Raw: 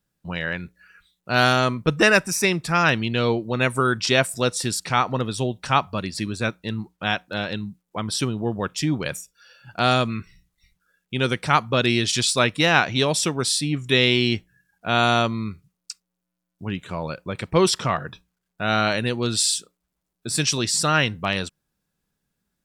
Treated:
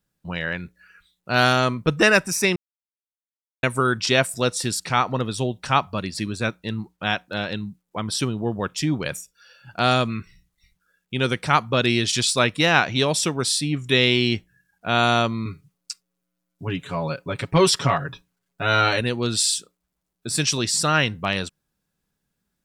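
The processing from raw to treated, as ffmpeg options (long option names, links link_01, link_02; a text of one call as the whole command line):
ffmpeg -i in.wav -filter_complex "[0:a]asettb=1/sr,asplit=3[link_01][link_02][link_03];[link_01]atrim=end=15.454[link_04];[link_02]atrim=start=15.45:end=19.01,asetpts=PTS-STARTPTS,afade=type=in:duration=0.004:curve=qsin,afade=type=out:start_time=3.556:duration=0.004:curve=qsin,aecho=1:1:7.2:0.88,atrim=end_sample=156996[link_05];[link_03]atrim=start=19.006[link_06];[link_04][link_05]acrossfade=duration=0.004:curve1=hsin:curve2=qsin[link_07];[link_07][link_06]acrossfade=duration=0.004:curve1=qsin:curve2=hsin,asplit=3[link_08][link_09][link_10];[link_08]atrim=end=2.56,asetpts=PTS-STARTPTS,afade=type=out:start_time=2.556:duration=0.004:curve=hsin[link_11];[link_09]atrim=start=2.56:end=3.63,asetpts=PTS-STARTPTS,volume=0[link_12];[link_10]atrim=start=3.63,asetpts=PTS-STARTPTS,afade=type=in:duration=0.004:curve=hsin[link_13];[link_11][link_12][link_13]concat=n=3:v=0:a=1" out.wav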